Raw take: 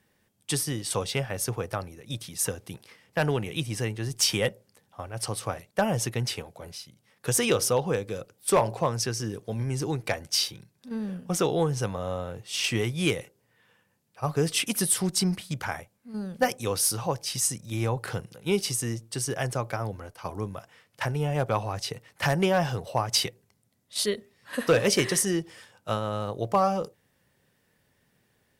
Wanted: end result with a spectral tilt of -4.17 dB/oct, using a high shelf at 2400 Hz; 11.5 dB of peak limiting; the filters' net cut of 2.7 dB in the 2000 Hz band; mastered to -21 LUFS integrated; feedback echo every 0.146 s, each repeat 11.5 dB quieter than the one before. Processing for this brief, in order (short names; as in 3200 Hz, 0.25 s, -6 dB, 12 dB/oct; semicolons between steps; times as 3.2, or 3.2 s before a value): bell 2000 Hz -7.5 dB; high shelf 2400 Hz +7 dB; limiter -17.5 dBFS; feedback echo 0.146 s, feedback 27%, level -11.5 dB; gain +8.5 dB